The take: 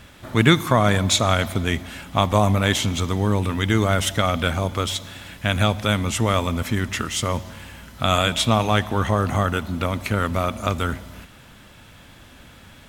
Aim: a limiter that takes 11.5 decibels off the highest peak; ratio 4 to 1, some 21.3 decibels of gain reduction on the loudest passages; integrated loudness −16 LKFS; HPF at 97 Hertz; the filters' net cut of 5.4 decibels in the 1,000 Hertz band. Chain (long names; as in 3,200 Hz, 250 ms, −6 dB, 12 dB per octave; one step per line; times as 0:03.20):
high-pass filter 97 Hz
parametric band 1,000 Hz −7.5 dB
downward compressor 4 to 1, threshold −37 dBFS
level +25 dB
brickwall limiter −4.5 dBFS